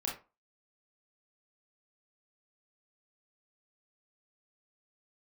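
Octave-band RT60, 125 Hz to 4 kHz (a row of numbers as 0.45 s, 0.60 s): 0.25 s, 0.30 s, 0.30 s, 0.30 s, 0.25 s, 0.20 s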